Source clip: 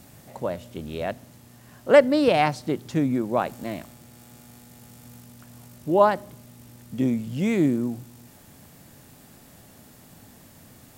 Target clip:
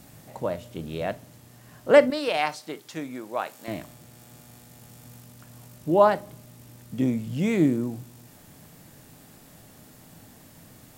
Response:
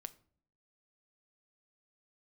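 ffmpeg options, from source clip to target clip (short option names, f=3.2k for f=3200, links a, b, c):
-filter_complex "[0:a]asettb=1/sr,asplit=3[a][b][c];[a]atrim=end=2.104[d];[b]atrim=start=2.1:end=3.68,asetpts=PTS-STARTPTS,afade=t=in:d=0.004:c=qsin,afade=t=out:st=1.576:d=0.004:c=qsin,highpass=f=1.1k:p=1[e];[c]atrim=start=3.676[f];[d][e]acrossfade=d=0.004:c1=hsin:c2=qsin[g];[g][f]acrossfade=d=0.004:c1=qsin:c2=hsin[h];[1:a]atrim=start_sample=2205,atrim=end_sample=3087[i];[h][i]afir=irnorm=-1:irlink=0,volume=4.5dB"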